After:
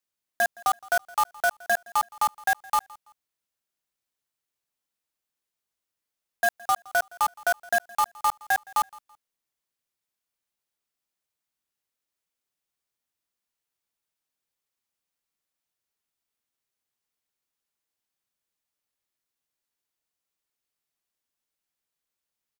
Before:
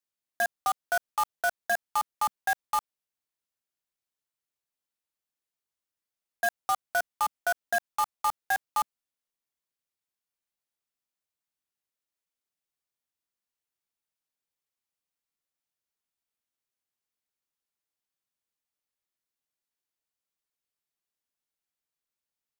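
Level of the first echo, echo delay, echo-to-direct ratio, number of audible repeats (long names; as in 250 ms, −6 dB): −23.0 dB, 166 ms, −22.5 dB, 2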